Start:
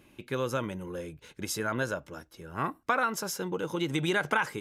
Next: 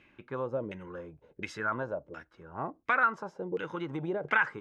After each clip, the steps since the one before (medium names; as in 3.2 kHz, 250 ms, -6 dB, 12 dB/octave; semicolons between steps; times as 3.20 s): LFO low-pass saw down 1.4 Hz 440–2300 Hz; peaking EQ 7.5 kHz +13 dB 2.7 oct; trim -6.5 dB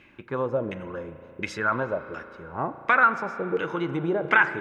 spring tank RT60 3.1 s, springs 35 ms, chirp 25 ms, DRR 11.5 dB; trim +7 dB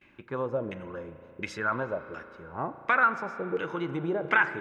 gate with hold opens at -46 dBFS; trim -4 dB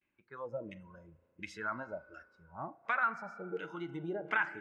spectral noise reduction 15 dB; trim -8.5 dB